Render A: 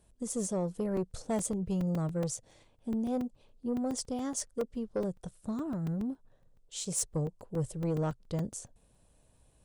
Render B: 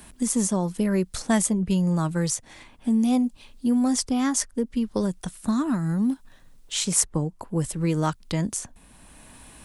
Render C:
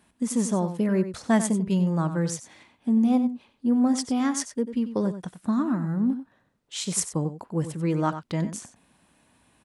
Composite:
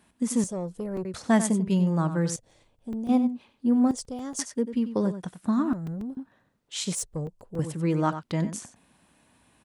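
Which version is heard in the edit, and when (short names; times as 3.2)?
C
0.44–1.05 from A
2.36–3.09 from A
3.91–4.39 from A
5.73–6.17 from A
6.95–7.59 from A
not used: B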